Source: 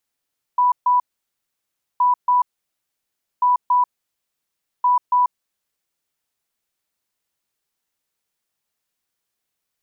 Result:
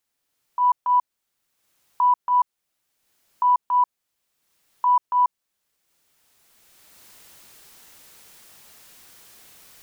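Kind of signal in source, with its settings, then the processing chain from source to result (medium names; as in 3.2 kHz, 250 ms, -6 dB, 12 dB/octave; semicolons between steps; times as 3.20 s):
beep pattern sine 988 Hz, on 0.14 s, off 0.14 s, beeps 2, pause 1.00 s, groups 4, -12.5 dBFS
recorder AGC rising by 17 dB/s; transient shaper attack -8 dB, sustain -3 dB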